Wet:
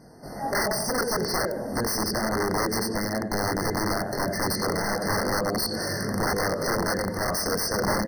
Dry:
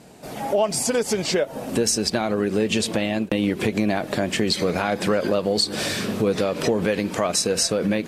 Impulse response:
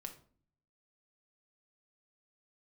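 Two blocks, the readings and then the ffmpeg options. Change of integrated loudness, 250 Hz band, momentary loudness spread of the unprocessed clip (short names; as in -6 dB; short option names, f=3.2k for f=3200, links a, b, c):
-4.0 dB, -6.0 dB, 4 LU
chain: -filter_complex "[0:a]lowshelf=f=71:g=7.5,bandreject=f=3.4k:w=18,flanger=delay=20:depth=4.6:speed=0.31,asplit=2[a][b];[b]adelay=89,lowpass=f=2.8k:p=1,volume=-7dB,asplit=2[c][d];[d]adelay=89,lowpass=f=2.8k:p=1,volume=0.52,asplit=2[e][f];[f]adelay=89,lowpass=f=2.8k:p=1,volume=0.52,asplit=2[g][h];[h]adelay=89,lowpass=f=2.8k:p=1,volume=0.52,asplit=2[i][j];[j]adelay=89,lowpass=f=2.8k:p=1,volume=0.52,asplit=2[k][l];[l]adelay=89,lowpass=f=2.8k:p=1,volume=0.52[m];[c][e][g][i][k][m]amix=inputs=6:normalize=0[n];[a][n]amix=inputs=2:normalize=0,aeval=exprs='(mod(8.41*val(0)+1,2)-1)/8.41':c=same,afftfilt=real='re*eq(mod(floor(b*sr/1024/2100),2),0)':imag='im*eq(mod(floor(b*sr/1024/2100),2),0)':win_size=1024:overlap=0.75"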